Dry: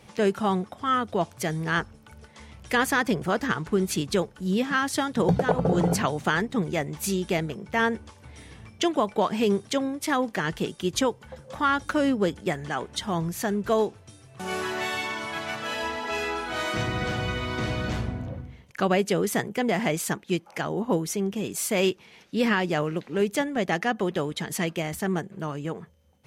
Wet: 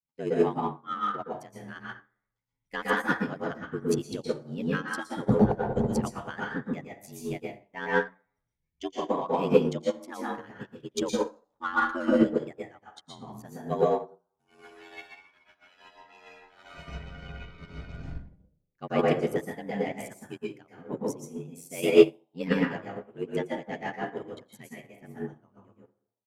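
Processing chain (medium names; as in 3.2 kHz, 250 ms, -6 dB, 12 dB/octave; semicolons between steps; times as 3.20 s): expander on every frequency bin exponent 1.5; transient shaper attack 0 dB, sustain -12 dB; ring modulator 45 Hz; on a send: frequency-shifting echo 89 ms, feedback 61%, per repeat +110 Hz, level -23 dB; on the sum: plate-style reverb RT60 0.69 s, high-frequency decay 0.5×, pre-delay 105 ms, DRR -4 dB; in parallel at -9 dB: saturation -26 dBFS, distortion -8 dB; on the sum: upward expansion 2.5:1, over -40 dBFS; trim +5.5 dB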